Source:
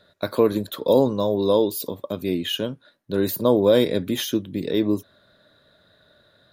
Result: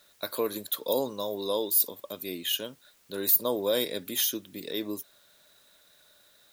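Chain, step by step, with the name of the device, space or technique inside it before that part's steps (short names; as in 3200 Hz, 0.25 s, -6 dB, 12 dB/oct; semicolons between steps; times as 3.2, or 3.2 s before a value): turntable without a phono preamp (RIAA curve recording; white noise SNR 32 dB); gain -8 dB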